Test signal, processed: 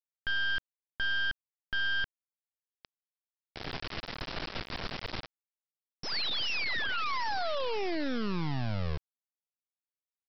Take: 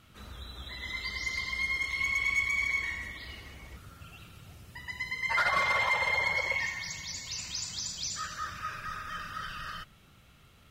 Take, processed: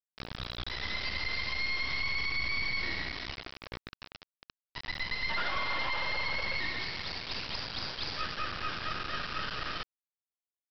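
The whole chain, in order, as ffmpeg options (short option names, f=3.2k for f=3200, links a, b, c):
-af "aresample=11025,acrusher=bits=4:dc=4:mix=0:aa=0.000001,aresample=44100,alimiter=level_in=4dB:limit=-24dB:level=0:latency=1:release=31,volume=-4dB,volume=6dB"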